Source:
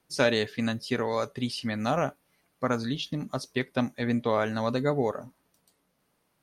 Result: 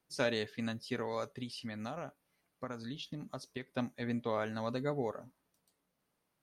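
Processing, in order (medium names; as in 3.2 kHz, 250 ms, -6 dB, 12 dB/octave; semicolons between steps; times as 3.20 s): 1.42–3.69 s: compression 6:1, threshold -29 dBFS, peak gain reduction 7.5 dB; trim -9 dB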